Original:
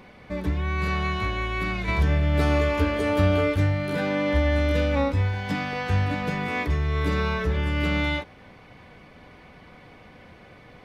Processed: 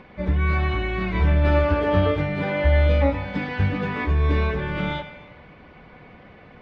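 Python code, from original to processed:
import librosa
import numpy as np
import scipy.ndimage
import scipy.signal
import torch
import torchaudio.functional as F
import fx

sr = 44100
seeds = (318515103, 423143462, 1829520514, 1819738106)

y = scipy.signal.sosfilt(scipy.signal.butter(2, 3000.0, 'lowpass', fs=sr, output='sos'), x)
y = fx.stretch_vocoder_free(y, sr, factor=0.61)
y = fx.rev_gated(y, sr, seeds[0], gate_ms=460, shape='falling', drr_db=10.5)
y = F.gain(torch.from_numpy(y), 5.0).numpy()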